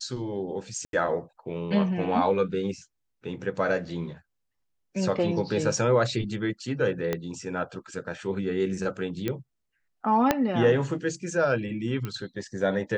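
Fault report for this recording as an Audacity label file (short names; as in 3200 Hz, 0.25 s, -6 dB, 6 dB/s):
0.850000	0.930000	gap 82 ms
7.130000	7.130000	pop -13 dBFS
9.280000	9.280000	pop -15 dBFS
10.310000	10.310000	pop -6 dBFS
12.050000	12.050000	pop -19 dBFS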